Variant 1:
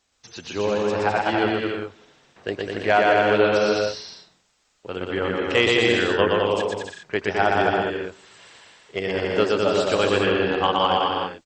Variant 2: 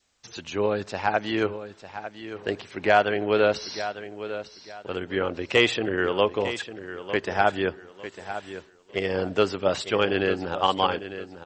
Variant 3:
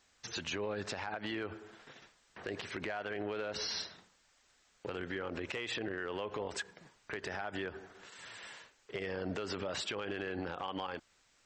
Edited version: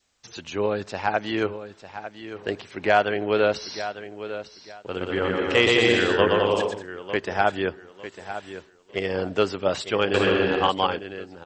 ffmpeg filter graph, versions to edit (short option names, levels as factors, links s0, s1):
-filter_complex "[0:a]asplit=2[s0][s1];[1:a]asplit=3[s2][s3][s4];[s2]atrim=end=4.95[s5];[s0]atrim=start=4.71:end=6.88[s6];[s3]atrim=start=6.64:end=10.142[s7];[s1]atrim=start=10.138:end=10.692[s8];[s4]atrim=start=10.688[s9];[s5][s6]acrossfade=d=0.24:c1=tri:c2=tri[s10];[s10][s7]acrossfade=d=0.24:c1=tri:c2=tri[s11];[s11][s8]acrossfade=d=0.004:c1=hsin:c2=hsin[s12];[s12][s9]acrossfade=d=0.004:c1=hsin:c2=hsin"